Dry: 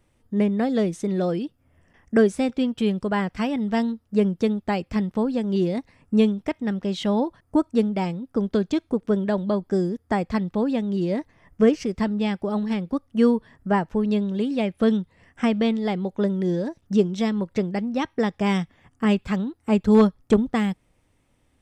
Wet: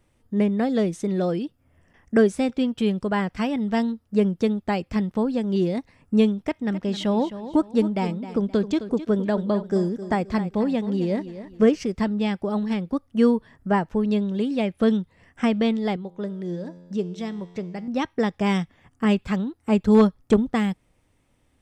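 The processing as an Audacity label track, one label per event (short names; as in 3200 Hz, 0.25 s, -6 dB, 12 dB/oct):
6.400000	11.780000	feedback echo 0.262 s, feedback 32%, level -13 dB
15.960000	17.880000	resonator 88 Hz, decay 1.5 s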